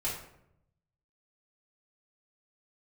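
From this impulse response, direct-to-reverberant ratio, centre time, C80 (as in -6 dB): -9.0 dB, 39 ms, 8.0 dB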